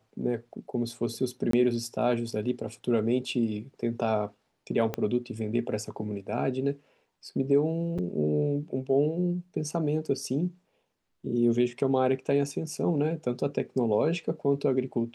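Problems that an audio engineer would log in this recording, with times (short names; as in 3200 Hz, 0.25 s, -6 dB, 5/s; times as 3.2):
1.51–1.53 gap 23 ms
4.94 pop -16 dBFS
7.98–7.99 gap 6.1 ms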